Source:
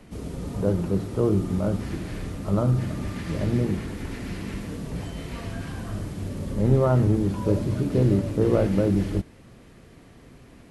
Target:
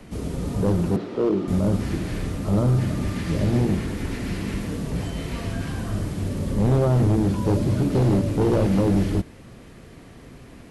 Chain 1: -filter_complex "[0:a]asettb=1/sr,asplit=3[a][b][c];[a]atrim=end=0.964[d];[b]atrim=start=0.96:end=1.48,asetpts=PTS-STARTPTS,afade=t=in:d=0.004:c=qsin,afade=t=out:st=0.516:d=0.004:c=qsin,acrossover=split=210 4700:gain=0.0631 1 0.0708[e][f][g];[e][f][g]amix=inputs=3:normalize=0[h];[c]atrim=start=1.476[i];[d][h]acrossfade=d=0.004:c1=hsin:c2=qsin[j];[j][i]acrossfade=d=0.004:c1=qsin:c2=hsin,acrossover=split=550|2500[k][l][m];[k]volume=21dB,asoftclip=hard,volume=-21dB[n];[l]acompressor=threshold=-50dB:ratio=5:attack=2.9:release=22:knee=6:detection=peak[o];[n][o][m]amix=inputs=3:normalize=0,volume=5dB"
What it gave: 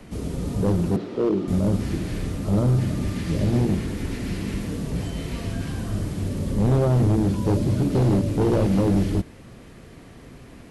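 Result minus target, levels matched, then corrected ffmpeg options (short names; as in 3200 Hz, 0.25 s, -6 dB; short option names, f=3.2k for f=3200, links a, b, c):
compressor: peak gain reduction +5.5 dB
-filter_complex "[0:a]asettb=1/sr,asplit=3[a][b][c];[a]atrim=end=0.964[d];[b]atrim=start=0.96:end=1.48,asetpts=PTS-STARTPTS,afade=t=in:d=0.004:c=qsin,afade=t=out:st=0.516:d=0.004:c=qsin,acrossover=split=210 4700:gain=0.0631 1 0.0708[e][f][g];[e][f][g]amix=inputs=3:normalize=0[h];[c]atrim=start=1.476[i];[d][h]acrossfade=d=0.004:c1=hsin:c2=qsin[j];[j][i]acrossfade=d=0.004:c1=qsin:c2=hsin,acrossover=split=550|2500[k][l][m];[k]volume=21dB,asoftclip=hard,volume=-21dB[n];[l]acompressor=threshold=-43dB:ratio=5:attack=2.9:release=22:knee=6:detection=peak[o];[n][o][m]amix=inputs=3:normalize=0,volume=5dB"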